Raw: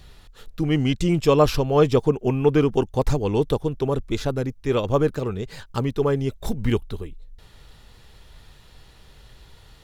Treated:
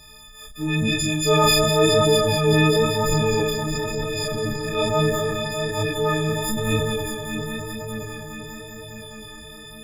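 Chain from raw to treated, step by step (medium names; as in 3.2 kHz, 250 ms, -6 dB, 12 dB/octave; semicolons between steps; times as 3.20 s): partials quantised in pitch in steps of 6 st; 3.40–4.75 s: compressor with a negative ratio -27 dBFS, ratio -1; on a send: multi-head delay 204 ms, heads first and third, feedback 74%, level -9.5 dB; on the sum: chorus voices 2, 0.95 Hz, delay 30 ms, depth 3 ms; transient shaper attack -6 dB, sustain +5 dB; trim +2 dB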